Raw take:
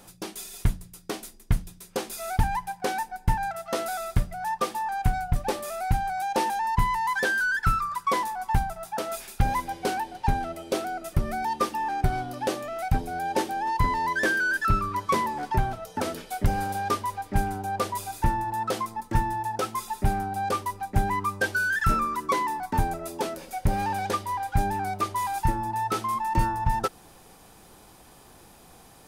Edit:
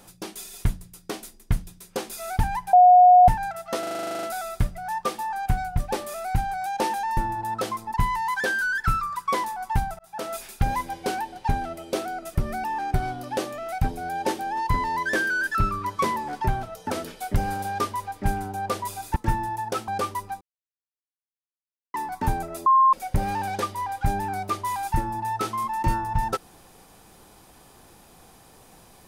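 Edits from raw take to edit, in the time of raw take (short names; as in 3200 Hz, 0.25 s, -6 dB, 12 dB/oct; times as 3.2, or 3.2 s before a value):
2.73–3.28 bleep 724 Hz -9 dBFS
3.79 stutter 0.04 s, 12 plays
8.78–9.05 fade in
11.43–11.74 cut
18.26–19.03 move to 6.73
19.75–20.39 cut
20.92–22.45 mute
23.17–23.44 bleep 1060 Hz -13 dBFS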